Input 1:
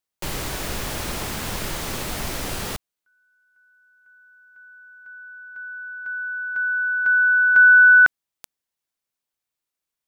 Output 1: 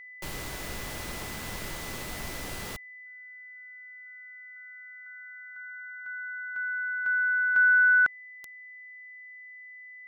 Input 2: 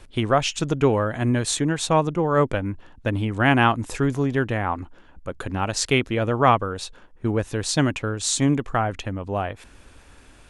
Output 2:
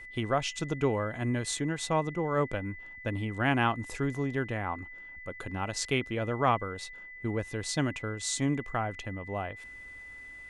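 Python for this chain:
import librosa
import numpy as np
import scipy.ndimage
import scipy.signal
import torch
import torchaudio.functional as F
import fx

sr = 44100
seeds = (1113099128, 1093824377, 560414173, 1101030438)

y = x + 10.0 ** (-35.0 / 20.0) * np.sin(2.0 * np.pi * 2000.0 * np.arange(len(x)) / sr)
y = F.gain(torch.from_numpy(y), -9.0).numpy()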